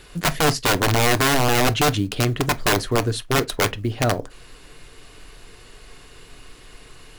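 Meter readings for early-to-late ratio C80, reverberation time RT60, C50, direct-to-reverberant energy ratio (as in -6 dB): 36.5 dB, no single decay rate, 26.5 dB, 10.5 dB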